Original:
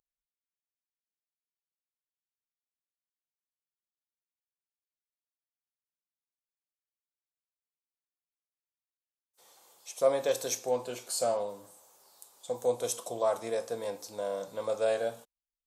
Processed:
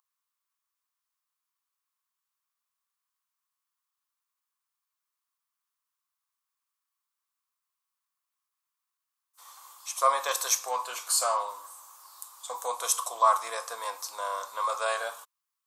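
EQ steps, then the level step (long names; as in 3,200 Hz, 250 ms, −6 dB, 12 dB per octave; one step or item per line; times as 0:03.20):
high-pass with resonance 1,100 Hz, resonance Q 6.9
high-shelf EQ 4,300 Hz +7 dB
+3.0 dB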